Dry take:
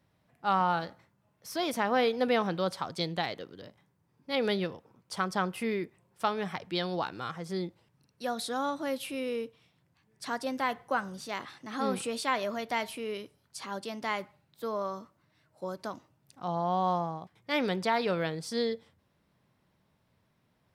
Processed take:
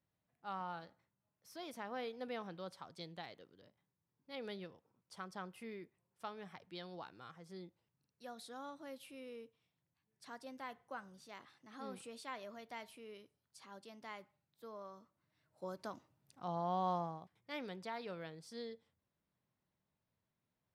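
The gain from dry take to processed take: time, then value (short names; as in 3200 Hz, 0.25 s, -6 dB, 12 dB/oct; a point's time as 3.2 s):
14.95 s -17 dB
15.66 s -8 dB
17.05 s -8 dB
17.65 s -16.5 dB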